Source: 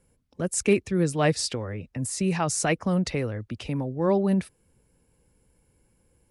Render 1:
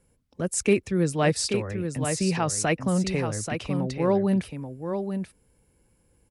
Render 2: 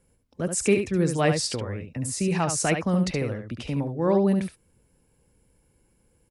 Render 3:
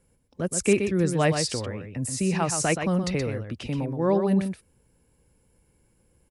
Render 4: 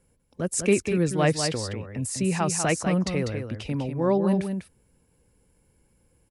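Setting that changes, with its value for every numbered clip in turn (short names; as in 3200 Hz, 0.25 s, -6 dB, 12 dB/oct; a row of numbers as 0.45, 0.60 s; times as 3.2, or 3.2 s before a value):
echo, time: 833, 71, 124, 197 ms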